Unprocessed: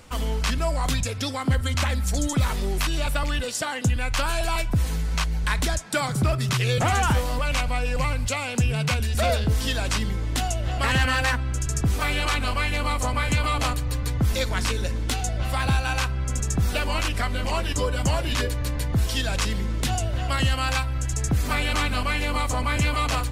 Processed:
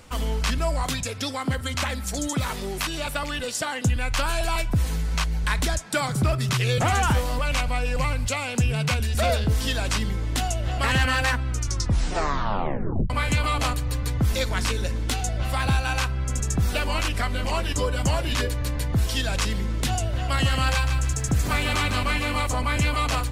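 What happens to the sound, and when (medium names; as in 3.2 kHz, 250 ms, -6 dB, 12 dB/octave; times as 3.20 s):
0.83–3.42 s: high-pass 150 Hz 6 dB/octave
11.47 s: tape stop 1.63 s
20.18–22.47 s: bit-crushed delay 153 ms, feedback 35%, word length 9-bit, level -7 dB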